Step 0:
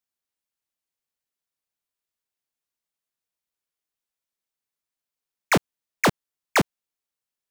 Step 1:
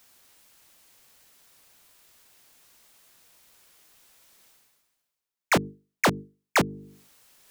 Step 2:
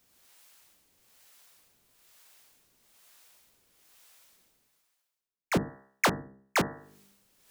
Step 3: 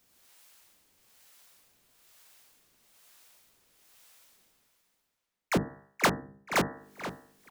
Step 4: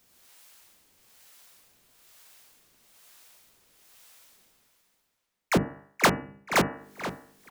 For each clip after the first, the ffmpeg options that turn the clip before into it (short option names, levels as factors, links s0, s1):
-af "bandreject=f=50:t=h:w=6,bandreject=f=100:t=h:w=6,bandreject=f=150:t=h:w=6,bandreject=f=200:t=h:w=6,bandreject=f=250:t=h:w=6,bandreject=f=300:t=h:w=6,bandreject=f=350:t=h:w=6,bandreject=f=400:t=h:w=6,bandreject=f=450:t=h:w=6,areverse,acompressor=mode=upward:threshold=0.0251:ratio=2.5,areverse,volume=0.841"
-filter_complex "[0:a]bandreject=f=66.84:t=h:w=4,bandreject=f=133.68:t=h:w=4,bandreject=f=200.52:t=h:w=4,bandreject=f=267.36:t=h:w=4,bandreject=f=334.2:t=h:w=4,bandreject=f=401.04:t=h:w=4,bandreject=f=467.88:t=h:w=4,bandreject=f=534.72:t=h:w=4,bandreject=f=601.56:t=h:w=4,bandreject=f=668.4:t=h:w=4,bandreject=f=735.24:t=h:w=4,bandreject=f=802.08:t=h:w=4,bandreject=f=868.92:t=h:w=4,bandreject=f=935.76:t=h:w=4,bandreject=f=1002.6:t=h:w=4,bandreject=f=1069.44:t=h:w=4,bandreject=f=1136.28:t=h:w=4,bandreject=f=1203.12:t=h:w=4,bandreject=f=1269.96:t=h:w=4,bandreject=f=1336.8:t=h:w=4,bandreject=f=1403.64:t=h:w=4,bandreject=f=1470.48:t=h:w=4,bandreject=f=1537.32:t=h:w=4,bandreject=f=1604.16:t=h:w=4,bandreject=f=1671:t=h:w=4,bandreject=f=1737.84:t=h:w=4,bandreject=f=1804.68:t=h:w=4,bandreject=f=1871.52:t=h:w=4,bandreject=f=1938.36:t=h:w=4,acrossover=split=480[s0][s1];[s0]aeval=exprs='val(0)*(1-0.7/2+0.7/2*cos(2*PI*1.1*n/s))':c=same[s2];[s1]aeval=exprs='val(0)*(1-0.7/2-0.7/2*cos(2*PI*1.1*n/s))':c=same[s3];[s2][s3]amix=inputs=2:normalize=0"
-filter_complex "[0:a]bandreject=f=50:t=h:w=6,bandreject=f=100:t=h:w=6,bandreject=f=150:t=h:w=6,asplit=2[s0][s1];[s1]adelay=479,lowpass=f=4600:p=1,volume=0.282,asplit=2[s2][s3];[s3]adelay=479,lowpass=f=4600:p=1,volume=0.35,asplit=2[s4][s5];[s5]adelay=479,lowpass=f=4600:p=1,volume=0.35,asplit=2[s6][s7];[s7]adelay=479,lowpass=f=4600:p=1,volume=0.35[s8];[s0][s2][s4][s6][s8]amix=inputs=5:normalize=0"
-af "bandreject=f=287.1:t=h:w=4,bandreject=f=574.2:t=h:w=4,bandreject=f=861.3:t=h:w=4,bandreject=f=1148.4:t=h:w=4,bandreject=f=1435.5:t=h:w=4,bandreject=f=1722.6:t=h:w=4,bandreject=f=2009.7:t=h:w=4,bandreject=f=2296.8:t=h:w=4,bandreject=f=2583.9:t=h:w=4,bandreject=f=2871:t=h:w=4,volume=1.58"